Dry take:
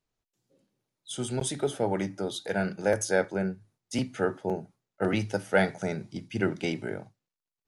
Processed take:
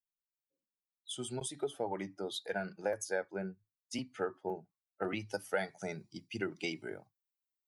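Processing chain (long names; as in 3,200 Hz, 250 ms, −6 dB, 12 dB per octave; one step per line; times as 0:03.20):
spectral dynamics exaggerated over time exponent 1.5
high-shelf EQ 6,900 Hz +10 dB
downward compressor 4 to 1, threshold −32 dBFS, peak gain reduction 11.5 dB
bass and treble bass −9 dB, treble −8 dB, from 0:05.30 treble +1 dB
level +1 dB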